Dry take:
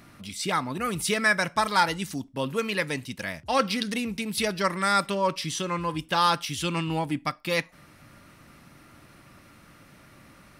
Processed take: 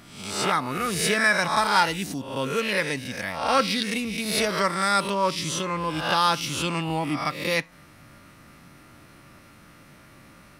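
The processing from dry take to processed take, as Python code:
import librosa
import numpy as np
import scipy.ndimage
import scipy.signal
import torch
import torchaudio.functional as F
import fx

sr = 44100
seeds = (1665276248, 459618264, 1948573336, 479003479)

y = fx.spec_swells(x, sr, rise_s=0.67)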